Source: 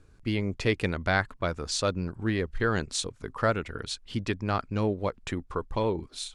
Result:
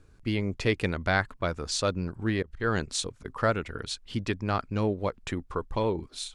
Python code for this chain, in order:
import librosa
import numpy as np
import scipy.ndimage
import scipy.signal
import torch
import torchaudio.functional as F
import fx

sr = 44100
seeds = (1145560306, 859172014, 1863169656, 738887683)

y = fx.auto_swell(x, sr, attack_ms=126.0, at=(2.42, 3.25))